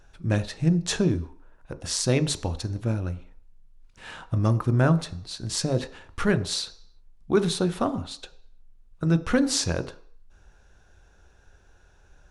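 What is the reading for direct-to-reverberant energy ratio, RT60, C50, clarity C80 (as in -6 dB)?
11.0 dB, 0.55 s, 16.5 dB, 19.0 dB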